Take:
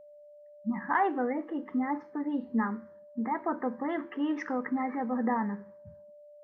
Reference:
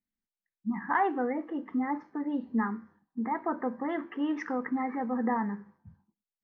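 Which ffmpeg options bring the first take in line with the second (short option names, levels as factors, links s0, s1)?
-af "bandreject=f=590:w=30"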